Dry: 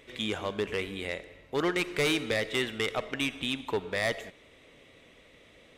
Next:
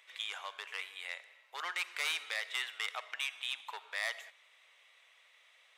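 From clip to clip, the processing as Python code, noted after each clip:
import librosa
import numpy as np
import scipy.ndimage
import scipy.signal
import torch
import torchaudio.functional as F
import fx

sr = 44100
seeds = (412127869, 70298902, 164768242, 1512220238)

y = scipy.signal.sosfilt(scipy.signal.butter(4, 860.0, 'highpass', fs=sr, output='sos'), x)
y = y * librosa.db_to_amplitude(-4.5)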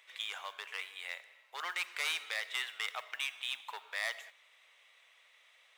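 y = fx.mod_noise(x, sr, seeds[0], snr_db=26)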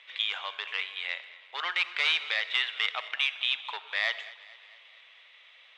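y = fx.lowpass_res(x, sr, hz=3400.0, q=1.9)
y = fx.echo_feedback(y, sr, ms=223, feedback_pct=56, wet_db=-19.0)
y = y * librosa.db_to_amplitude(5.0)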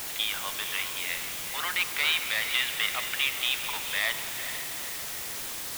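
y = fx.echo_diffused(x, sr, ms=462, feedback_pct=46, wet_db=-9.0)
y = fx.quant_dither(y, sr, seeds[1], bits=6, dither='triangular')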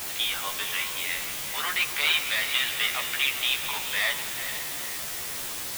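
y = fx.doubler(x, sr, ms=14.0, db=-2.0)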